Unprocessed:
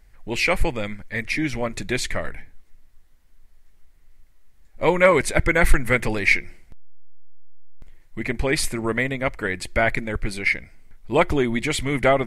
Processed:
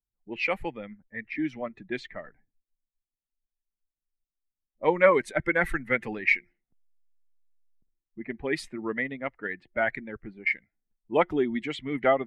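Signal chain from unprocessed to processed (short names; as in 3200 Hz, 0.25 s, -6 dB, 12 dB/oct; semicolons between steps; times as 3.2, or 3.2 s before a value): per-bin expansion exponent 1.5; wow and flutter 21 cents; three-band isolator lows -18 dB, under 170 Hz, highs -15 dB, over 3200 Hz; low-pass opened by the level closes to 490 Hz, open at -23 dBFS; gain -2 dB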